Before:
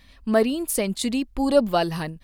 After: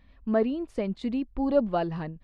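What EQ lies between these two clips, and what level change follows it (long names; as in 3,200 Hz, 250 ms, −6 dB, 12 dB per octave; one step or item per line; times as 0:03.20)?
head-to-tape spacing loss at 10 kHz 37 dB
−3.0 dB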